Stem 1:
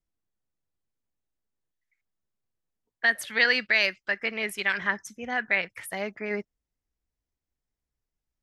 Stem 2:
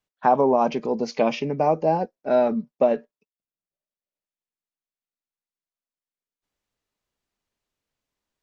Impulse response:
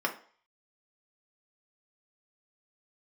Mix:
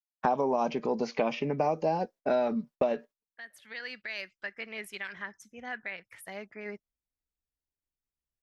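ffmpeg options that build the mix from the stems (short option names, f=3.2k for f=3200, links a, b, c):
-filter_complex "[0:a]alimiter=limit=-16dB:level=0:latency=1:release=331,adelay=350,volume=-9.5dB[a];[1:a]agate=range=-43dB:threshold=-43dB:ratio=16:detection=peak,acrossover=split=860|2800[b][c][d];[b]acompressor=threshold=-32dB:ratio=4[e];[c]acompressor=threshold=-38dB:ratio=4[f];[d]acompressor=threshold=-53dB:ratio=4[g];[e][f][g]amix=inputs=3:normalize=0,volume=3dB,asplit=2[h][i];[i]apad=whole_len=387032[j];[a][j]sidechaincompress=threshold=-35dB:ratio=12:attack=5.9:release=1220[k];[k][h]amix=inputs=2:normalize=0"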